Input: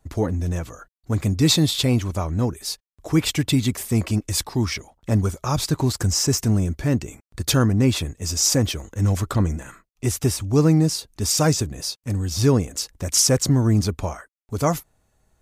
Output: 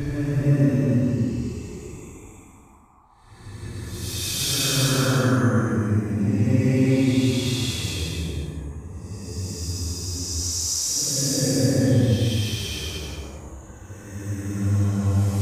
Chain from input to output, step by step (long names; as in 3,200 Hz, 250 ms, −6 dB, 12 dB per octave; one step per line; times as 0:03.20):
harmonic generator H 2 −26 dB, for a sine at −4.5 dBFS
rotating-speaker cabinet horn 0.75 Hz
extreme stretch with random phases 6.6×, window 0.25 s, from 0:06.80
noise in a band 730–1,200 Hz −57 dBFS